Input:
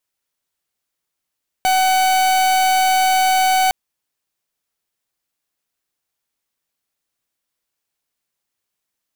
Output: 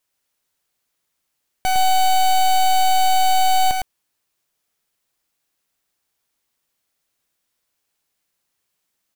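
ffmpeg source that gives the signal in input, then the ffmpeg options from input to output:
-f lavfi -i "aevalsrc='0.178*(2*lt(mod(752*t,1),0.43)-1)':d=2.06:s=44100"
-filter_complex "[0:a]acontrast=88,aeval=exprs='(tanh(8.91*val(0)+0.7)-tanh(0.7))/8.91':c=same,asplit=2[a][b];[b]aecho=0:1:108:0.631[c];[a][c]amix=inputs=2:normalize=0"

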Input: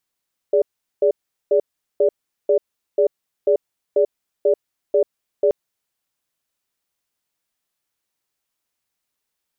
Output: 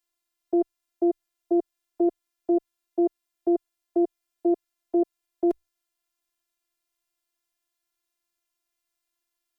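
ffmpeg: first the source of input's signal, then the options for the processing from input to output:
-f lavfi -i "aevalsrc='0.178*(sin(2*PI*413*t)+sin(2*PI*581*t))*clip(min(mod(t,0.49),0.09-mod(t,0.49))/0.005,0,1)':d=4.98:s=44100"
-af "afreqshift=-29,afftfilt=real='hypot(re,im)*cos(PI*b)':imag='0':win_size=512:overlap=0.75"

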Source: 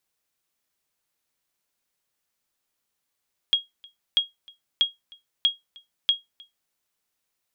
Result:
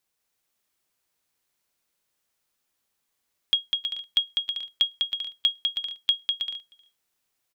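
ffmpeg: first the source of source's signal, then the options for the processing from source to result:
-f lavfi -i "aevalsrc='0.266*(sin(2*PI*3280*mod(t,0.64))*exp(-6.91*mod(t,0.64)/0.17)+0.0473*sin(2*PI*3280*max(mod(t,0.64)-0.31,0))*exp(-6.91*max(mod(t,0.64)-0.31,0)/0.17))':d=3.2:s=44100"
-af "aecho=1:1:200|320|392|435.2|461.1:0.631|0.398|0.251|0.158|0.1"

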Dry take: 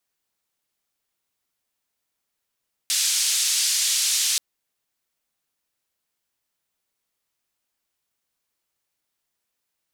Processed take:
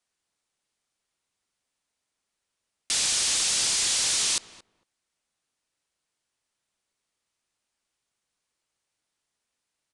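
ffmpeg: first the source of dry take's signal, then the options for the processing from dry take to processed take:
-f lavfi -i "anoisesrc=c=white:d=1.48:r=44100:seed=1,highpass=f=3900,lowpass=f=7600,volume=-9.6dB"
-filter_complex "[0:a]aeval=exprs='0.112*(abs(mod(val(0)/0.112+3,4)-2)-1)':c=same,asplit=2[a][b];[b]adelay=226,lowpass=f=1.1k:p=1,volume=-13dB,asplit=2[c][d];[d]adelay=226,lowpass=f=1.1k:p=1,volume=0.16[e];[a][c][e]amix=inputs=3:normalize=0,aresample=22050,aresample=44100"

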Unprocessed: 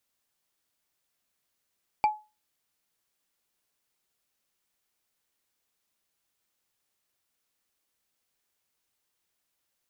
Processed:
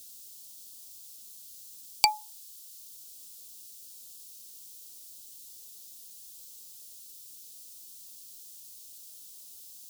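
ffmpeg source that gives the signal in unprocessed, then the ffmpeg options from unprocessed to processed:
-f lavfi -i "aevalsrc='0.158*pow(10,-3*t/0.28)*sin(2*PI*851*t)+0.0501*pow(10,-3*t/0.083)*sin(2*PI*2346.2*t)+0.0158*pow(10,-3*t/0.037)*sin(2*PI*4598.8*t)+0.00501*pow(10,-3*t/0.02)*sin(2*PI*7602*t)+0.00158*pow(10,-3*t/0.013)*sin(2*PI*11352.3*t)':d=0.45:s=44100"
-filter_complex "[0:a]acrossover=split=590|2800[a][b][c];[a]acompressor=mode=upward:threshold=-55dB:ratio=2.5[d];[d][b][c]amix=inputs=3:normalize=0,tiltshelf=f=740:g=-3.5,aexciter=amount=14.5:drive=6.8:freq=3.1k"

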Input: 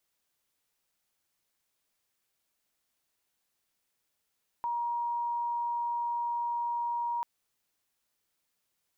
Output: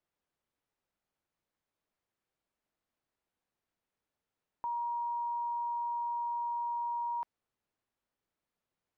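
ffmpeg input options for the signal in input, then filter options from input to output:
-f lavfi -i "sine=f=948:d=2.59:r=44100,volume=-10.94dB"
-af "lowpass=f=1k:p=1"

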